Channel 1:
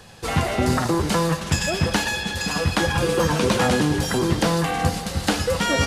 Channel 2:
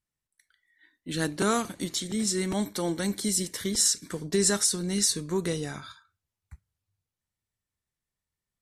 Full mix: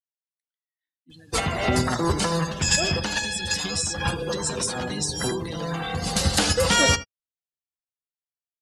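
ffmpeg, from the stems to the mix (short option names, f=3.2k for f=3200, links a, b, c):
-filter_complex "[0:a]equalizer=f=280:w=1.5:g=-2,alimiter=limit=-14dB:level=0:latency=1:release=230,adelay=1100,volume=-2.5dB,asplit=2[a][b];[b]volume=-14dB[c];[1:a]equalizer=f=3.1k:w=0.98:g=7.5,acompressor=threshold=-31dB:ratio=12,volume=-6.5dB,afade=t=in:st=2.98:d=0.62:silence=0.281838,asplit=2[d][e];[e]apad=whole_len=307244[f];[a][f]sidechaincompress=threshold=-52dB:ratio=6:attack=6.1:release=210[g];[c]aecho=0:1:79:1[h];[g][d][h]amix=inputs=3:normalize=0,afftdn=nr=23:nf=-43,highshelf=f=4k:g=11.5,dynaudnorm=f=230:g=9:m=6.5dB"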